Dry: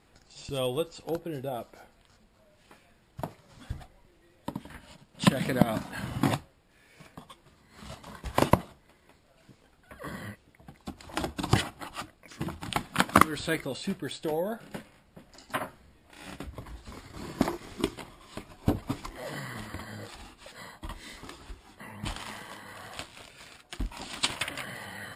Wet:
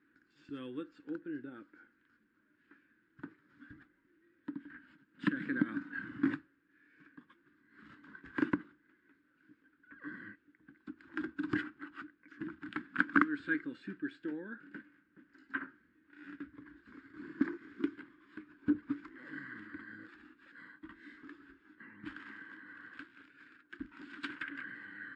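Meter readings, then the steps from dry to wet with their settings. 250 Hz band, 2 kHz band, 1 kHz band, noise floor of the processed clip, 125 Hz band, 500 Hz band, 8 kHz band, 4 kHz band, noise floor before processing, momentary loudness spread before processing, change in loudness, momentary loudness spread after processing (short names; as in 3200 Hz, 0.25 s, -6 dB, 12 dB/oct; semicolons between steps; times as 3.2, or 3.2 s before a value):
-4.0 dB, -2.5 dB, -13.5 dB, -73 dBFS, -18.0 dB, -15.0 dB, under -30 dB, -20.5 dB, -63 dBFS, 20 LU, -7.0 dB, 21 LU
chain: double band-pass 680 Hz, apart 2.4 oct; air absorption 59 m; gain +2.5 dB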